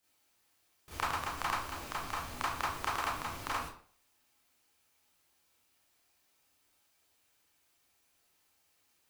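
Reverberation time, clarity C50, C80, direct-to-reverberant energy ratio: 0.50 s, 2.0 dB, 7.5 dB, −9.0 dB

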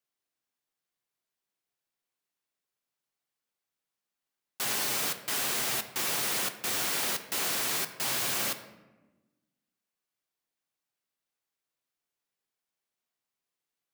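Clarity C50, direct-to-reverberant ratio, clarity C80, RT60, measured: 11.0 dB, 7.5 dB, 13.0 dB, 1.2 s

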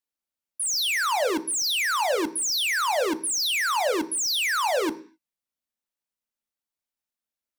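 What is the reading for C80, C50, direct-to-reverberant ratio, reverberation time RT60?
21.5 dB, 17.0 dB, 9.0 dB, 0.45 s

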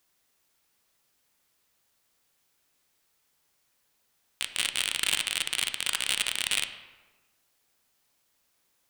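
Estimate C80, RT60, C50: 12.0 dB, 1.3 s, 10.5 dB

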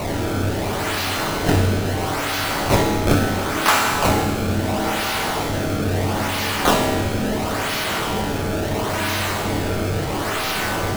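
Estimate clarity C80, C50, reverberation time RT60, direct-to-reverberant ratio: 4.0 dB, 2.5 dB, 1.6 s, −0.5 dB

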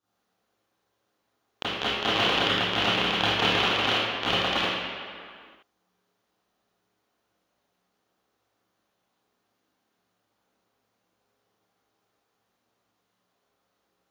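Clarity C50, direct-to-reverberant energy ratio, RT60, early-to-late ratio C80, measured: −3.0 dB, −12.5 dB, non-exponential decay, −0.5 dB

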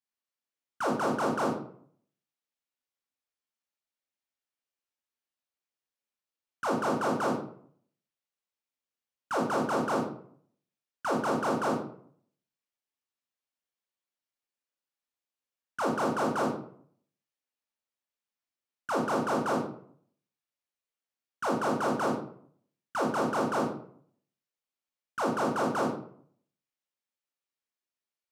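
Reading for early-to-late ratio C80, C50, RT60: 8.5 dB, 4.0 dB, 0.60 s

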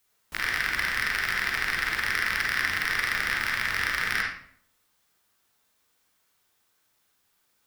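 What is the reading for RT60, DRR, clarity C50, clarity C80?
0.60 s, −2.5 dB, 1.5 dB, 7.0 dB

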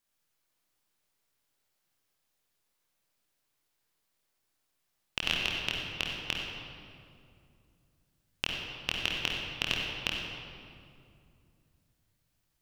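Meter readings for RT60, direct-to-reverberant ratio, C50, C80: 2.4 s, −3.5 dB, −0.5 dB, 1.5 dB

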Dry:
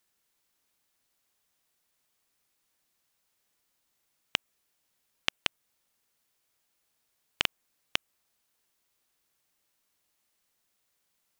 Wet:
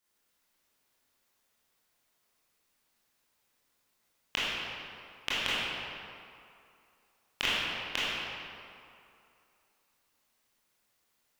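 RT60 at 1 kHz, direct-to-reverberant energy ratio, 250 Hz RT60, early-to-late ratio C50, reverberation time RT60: 2.7 s, −10.5 dB, 2.3 s, −4.5 dB, 2.6 s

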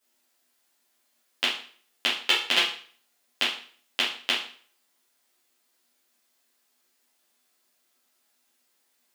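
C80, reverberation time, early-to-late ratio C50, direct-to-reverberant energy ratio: 10.5 dB, 0.45 s, 4.0 dB, −9.5 dB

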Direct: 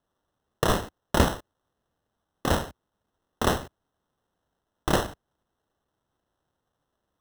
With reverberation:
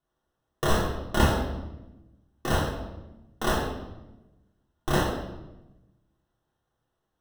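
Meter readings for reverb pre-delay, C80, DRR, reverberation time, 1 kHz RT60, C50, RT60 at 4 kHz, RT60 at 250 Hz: 3 ms, 6.5 dB, −6.0 dB, 1.0 s, 0.95 s, 3.5 dB, 0.80 s, 1.4 s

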